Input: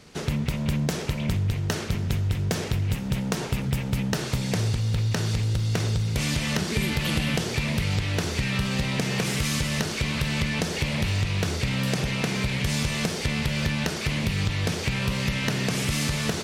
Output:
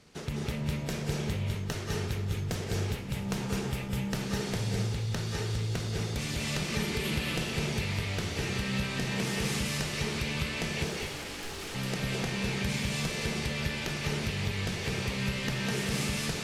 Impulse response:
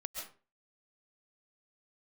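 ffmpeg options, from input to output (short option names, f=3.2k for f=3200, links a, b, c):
-filter_complex "[0:a]asettb=1/sr,asplit=3[a][b][c];[a]atrim=end=10.844[d];[b]atrim=start=10.84:end=11.75,asetpts=PTS-STARTPTS,afade=t=in:d=0.004:c=qsin,afade=t=out:st=0.906:d=0.004:c=qsin,aeval=exprs='0.0335*(abs(mod(val(0)/0.0335+3,4)-2)-1)':c=same[e];[c]atrim=start=11.746[f];[d][e]acrossfade=d=0.004:c1=hsin:c2=qsin[g];[g][f]acrossfade=d=0.004:c1=qsin:c2=hsin[h];[1:a]atrim=start_sample=2205,asetrate=28224,aresample=44100[i];[h][i]afir=irnorm=-1:irlink=0,volume=-7dB"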